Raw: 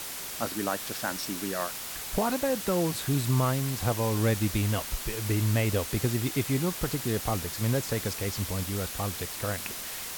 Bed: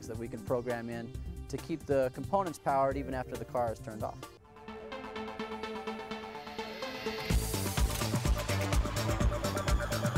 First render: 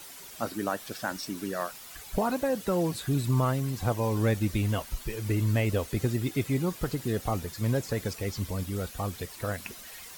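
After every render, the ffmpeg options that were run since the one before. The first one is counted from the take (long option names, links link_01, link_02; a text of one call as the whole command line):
ffmpeg -i in.wav -af "afftdn=noise_reduction=11:noise_floor=-38" out.wav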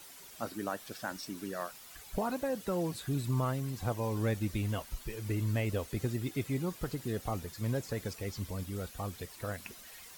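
ffmpeg -i in.wav -af "volume=-6dB" out.wav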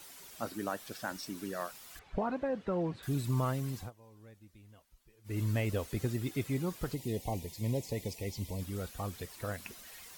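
ffmpeg -i in.wav -filter_complex "[0:a]asettb=1/sr,asplit=3[link_01][link_02][link_03];[link_01]atrim=end=1.994[link_04];[link_02]atrim=start=1.99:end=3.03,asetpts=PTS-STARTPTS,afade=type=in:duration=0.004:curve=qsin,afade=type=out:start_time=1.036:duration=0.004:curve=qsin,lowpass=2300[link_05];[link_03]atrim=start=3.026[link_06];[link_04][link_05]acrossfade=duration=0.004:curve1=hsin:curve2=qsin[link_07];[link_07][link_06]acrossfade=duration=0.004:curve1=qsin:curve2=hsin,asettb=1/sr,asplit=3[link_08][link_09][link_10];[link_08]atrim=end=6.944[link_11];[link_09]atrim=start=6.94:end=8.61,asetpts=PTS-STARTPTS,afade=type=in:duration=0.004:curve=qsin,afade=type=out:start_time=1.666:duration=0.004:curve=qsin,asuperstop=centerf=1400:order=8:qfactor=1.5[link_12];[link_10]atrim=start=8.606[link_13];[link_11][link_12]acrossfade=duration=0.004:curve1=hsin:curve2=qsin[link_14];[link_14][link_13]acrossfade=duration=0.004:curve1=qsin:curve2=hsin,asplit=3[link_15][link_16][link_17];[link_15]atrim=end=3.91,asetpts=PTS-STARTPTS,afade=type=out:start_time=3.76:duration=0.15:silence=0.0630957[link_18];[link_16]atrim=start=3.91:end=5.24,asetpts=PTS-STARTPTS,volume=-24dB[link_19];[link_17]atrim=start=5.24,asetpts=PTS-STARTPTS,afade=type=in:duration=0.15:silence=0.0630957[link_20];[link_18][link_19][link_20]concat=n=3:v=0:a=1" out.wav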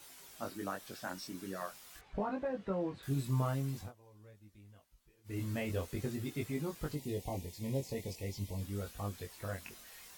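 ffmpeg -i in.wav -af "flanger=delay=19.5:depth=2.7:speed=0.45" out.wav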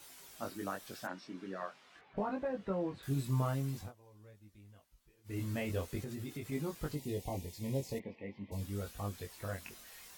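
ffmpeg -i in.wav -filter_complex "[0:a]asplit=3[link_01][link_02][link_03];[link_01]afade=type=out:start_time=1.06:duration=0.02[link_04];[link_02]highpass=170,lowpass=3100,afade=type=in:start_time=1.06:duration=0.02,afade=type=out:start_time=2.16:duration=0.02[link_05];[link_03]afade=type=in:start_time=2.16:duration=0.02[link_06];[link_04][link_05][link_06]amix=inputs=3:normalize=0,asettb=1/sr,asplit=3[link_07][link_08][link_09];[link_07]atrim=end=6.004[link_10];[link_08]atrim=start=6:end=6.52,asetpts=PTS-STARTPTS,afade=type=in:duration=0.004:curve=qsin,afade=type=out:start_time=0.516:duration=0.004:curve=qsin,acompressor=threshold=-38dB:ratio=6:attack=3.2:release=140:knee=1:detection=peak[link_11];[link_09]atrim=start=6.516[link_12];[link_10][link_11]acrossfade=duration=0.004:curve1=hsin:curve2=qsin[link_13];[link_13][link_12]acrossfade=duration=0.004:curve1=qsin:curve2=hsin,asplit=3[link_14][link_15][link_16];[link_14]afade=type=out:start_time=7.98:duration=0.02[link_17];[link_15]highpass=220,equalizer=frequency=220:width_type=q:width=4:gain=7,equalizer=frequency=400:width_type=q:width=4:gain=-4,equalizer=frequency=690:width_type=q:width=4:gain=-4,equalizer=frequency=1600:width_type=q:width=4:gain=6,lowpass=frequency=2400:width=0.5412,lowpass=frequency=2400:width=1.3066,afade=type=in:start_time=7.98:duration=0.02,afade=type=out:start_time=8.51:duration=0.02[link_18];[link_16]afade=type=in:start_time=8.51:duration=0.02[link_19];[link_17][link_18][link_19]amix=inputs=3:normalize=0" out.wav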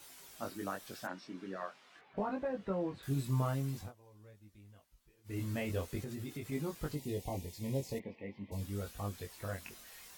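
ffmpeg -i in.wav -filter_complex "[0:a]asettb=1/sr,asplit=3[link_01][link_02][link_03];[link_01]atrim=end=1.564[link_04];[link_02]atrim=start=1.56:end=2.19,asetpts=PTS-STARTPTS,afade=type=in:duration=0.004:curve=qsin,afade=type=out:start_time=0.626:duration=0.004:curve=qsin,highpass=frequency=140:poles=1[link_05];[link_03]atrim=start=2.186[link_06];[link_04][link_05]acrossfade=duration=0.004:curve1=hsin:curve2=qsin[link_07];[link_07][link_06]acrossfade=duration=0.004:curve1=qsin:curve2=hsin" out.wav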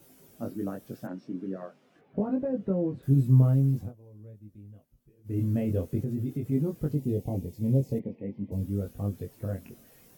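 ffmpeg -i in.wav -af "equalizer=frequency=125:width_type=o:width=1:gain=12,equalizer=frequency=250:width_type=o:width=1:gain=9,equalizer=frequency=500:width_type=o:width=1:gain=6,equalizer=frequency=1000:width_type=o:width=1:gain=-7,equalizer=frequency=2000:width_type=o:width=1:gain=-6,equalizer=frequency=4000:width_type=o:width=1:gain=-9,equalizer=frequency=8000:width_type=o:width=1:gain=-6" out.wav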